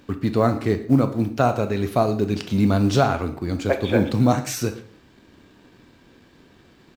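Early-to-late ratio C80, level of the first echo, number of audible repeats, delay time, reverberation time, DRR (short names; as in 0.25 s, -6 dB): 15.0 dB, -20.0 dB, 1, 0.116 s, 0.45 s, 7.5 dB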